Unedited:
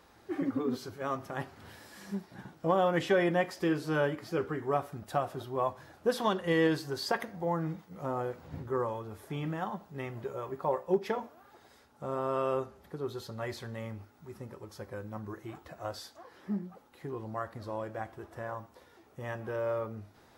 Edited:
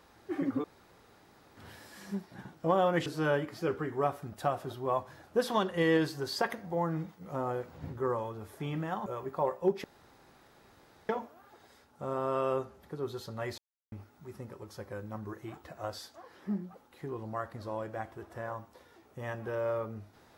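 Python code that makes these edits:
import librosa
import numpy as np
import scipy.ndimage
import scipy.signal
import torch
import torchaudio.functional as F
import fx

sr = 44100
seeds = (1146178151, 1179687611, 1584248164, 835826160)

y = fx.edit(x, sr, fx.room_tone_fill(start_s=0.64, length_s=0.93),
    fx.cut(start_s=3.06, length_s=0.7),
    fx.cut(start_s=9.76, length_s=0.56),
    fx.insert_room_tone(at_s=11.1, length_s=1.25),
    fx.silence(start_s=13.59, length_s=0.34), tone=tone)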